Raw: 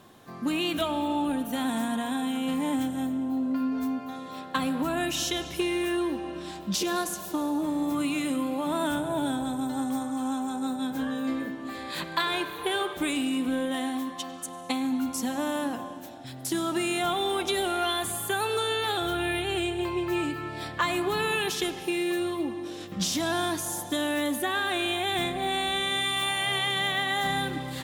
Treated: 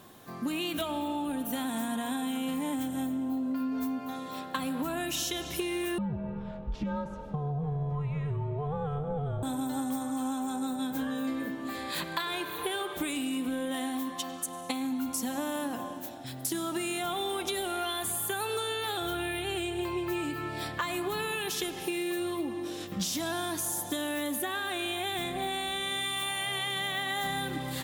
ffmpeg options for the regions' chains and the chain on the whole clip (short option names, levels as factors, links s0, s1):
-filter_complex "[0:a]asettb=1/sr,asplit=3[s0][s1][s2];[s0]atrim=end=5.984[s3];[s1]atrim=start=5.98:end=9.43,asetpts=PTS-STARTPTS,afade=t=in:d=0.004:c=qsin,afade=t=out:st=3.446:d=0.004:c=qsin,lowpass=1200,afreqshift=-150[s4];[s2]atrim=start=9.426[s5];[s3][s4]acrossfade=d=0.004:c1=hsin:c2=qsin[s6];[s6][s5]acrossfade=d=0.004:c1=qsin:c2=hsin,highshelf=f=11000:g=11,acompressor=threshold=0.0355:ratio=6"